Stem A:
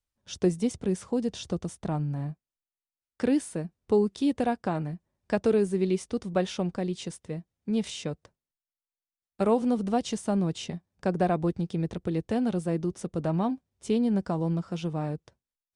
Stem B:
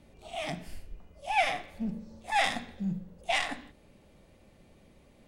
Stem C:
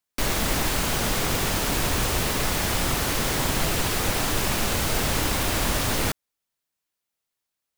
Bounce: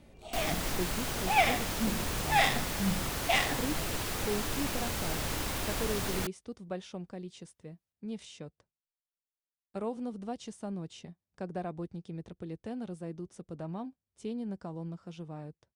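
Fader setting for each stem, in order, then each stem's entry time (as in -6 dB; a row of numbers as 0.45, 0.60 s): -12.0, +1.0, -10.0 dB; 0.35, 0.00, 0.15 s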